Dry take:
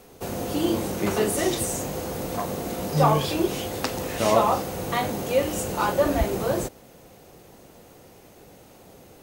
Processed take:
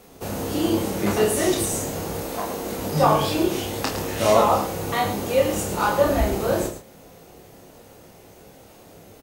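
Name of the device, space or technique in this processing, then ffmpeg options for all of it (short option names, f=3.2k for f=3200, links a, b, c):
slapback doubling: -filter_complex "[0:a]asettb=1/sr,asplit=3[a][b][c];[a]atrim=end=2.204[d];[b]atrim=start=2.2:end=2.71,asetpts=PTS-STARTPTS,afade=t=in:d=0.004:c=qsin,afade=t=out:st=0.506:d=0.004:c=qsin,equalizer=f=110:w=1.1:g=-13[e];[c]atrim=start=2.706[f];[d][e]acrossfade=d=0.004:c1=hsin:c2=qsin[g];[g][f]acrossfade=d=0.004:c1=qsin:c2=hsin,asplit=3[h][i][j];[i]adelay=19,volume=-8dB[k];[j]adelay=108,volume=-9.5dB[l];[h][k][l]amix=inputs=3:normalize=0,asplit=2[m][n];[n]adelay=30,volume=-4.5dB[o];[m][o]amix=inputs=2:normalize=0"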